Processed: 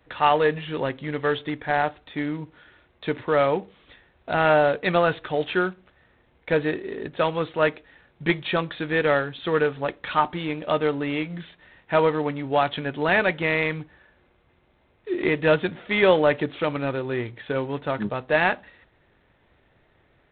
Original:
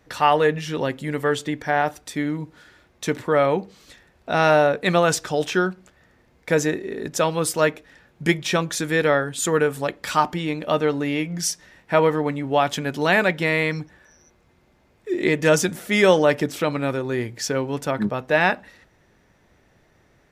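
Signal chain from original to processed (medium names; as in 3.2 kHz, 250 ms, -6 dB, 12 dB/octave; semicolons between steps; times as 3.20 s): peaking EQ 200 Hz -4 dB 0.9 oct; trim -1.5 dB; G.726 24 kbps 8 kHz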